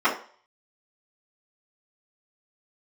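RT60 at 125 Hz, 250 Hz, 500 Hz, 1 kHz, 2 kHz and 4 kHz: 0.40 s, 0.35 s, 0.45 s, 0.45 s, 0.40 s, 0.45 s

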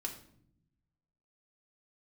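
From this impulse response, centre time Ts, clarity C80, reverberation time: 16 ms, 13.0 dB, 0.70 s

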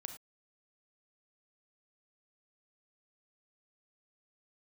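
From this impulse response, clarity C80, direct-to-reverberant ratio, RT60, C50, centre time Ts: 12.5 dB, 6.5 dB, no single decay rate, 8.5 dB, 13 ms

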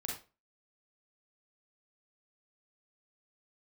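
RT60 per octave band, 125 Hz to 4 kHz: 0.35 s, 0.35 s, 0.35 s, 0.30 s, 0.25 s, 0.25 s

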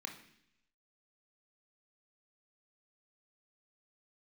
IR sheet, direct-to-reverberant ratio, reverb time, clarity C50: 2.5 dB, 0.70 s, 8.5 dB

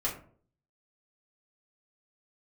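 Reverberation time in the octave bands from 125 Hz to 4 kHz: 0.70 s, 0.60 s, 0.55 s, 0.45 s, 0.35 s, 0.25 s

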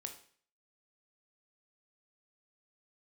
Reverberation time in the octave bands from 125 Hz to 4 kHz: 0.55 s, 0.50 s, 0.50 s, 0.50 s, 0.50 s, 0.50 s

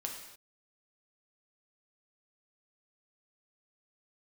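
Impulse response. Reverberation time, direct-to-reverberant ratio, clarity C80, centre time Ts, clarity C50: no single decay rate, 0.5 dB, 7.0 dB, 36 ms, 4.5 dB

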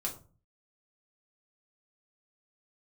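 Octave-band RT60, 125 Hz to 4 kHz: 0.55 s, 0.55 s, 0.40 s, 0.35 s, 0.25 s, 0.25 s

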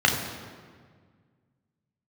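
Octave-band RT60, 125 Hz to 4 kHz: 2.5 s, 2.2 s, 1.8 s, 1.6 s, 1.5 s, 1.2 s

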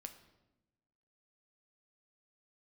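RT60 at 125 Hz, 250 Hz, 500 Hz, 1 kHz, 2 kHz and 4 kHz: 1.3 s, 1.3 s, 1.1 s, 0.90 s, 0.80 s, 0.75 s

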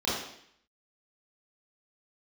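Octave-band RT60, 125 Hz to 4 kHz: 0.70 s, 0.70 s, 0.65 s, 0.65 s, 0.75 s, 0.70 s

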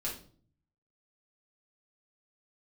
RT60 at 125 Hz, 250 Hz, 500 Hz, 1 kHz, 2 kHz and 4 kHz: 1.0 s, 0.75 s, 0.55 s, 0.40 s, 0.35 s, 0.35 s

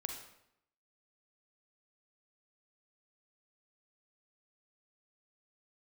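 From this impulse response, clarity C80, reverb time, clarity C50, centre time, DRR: 8.0 dB, 0.75 s, 5.0 dB, 30 ms, 3.5 dB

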